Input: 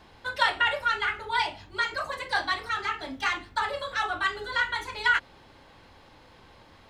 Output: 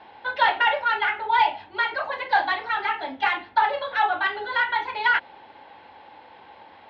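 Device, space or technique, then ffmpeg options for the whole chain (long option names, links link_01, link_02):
overdrive pedal into a guitar cabinet: -filter_complex "[0:a]asplit=2[link_01][link_02];[link_02]highpass=frequency=720:poles=1,volume=13dB,asoftclip=type=tanh:threshold=-8dB[link_03];[link_01][link_03]amix=inputs=2:normalize=0,lowpass=frequency=2200:poles=1,volume=-6dB,highpass=96,equalizer=frequency=140:width_type=q:width=4:gain=-8,equalizer=frequency=840:width_type=q:width=4:gain=9,equalizer=frequency=1200:width_type=q:width=4:gain=-7,lowpass=frequency=3900:width=0.5412,lowpass=frequency=3900:width=1.3066"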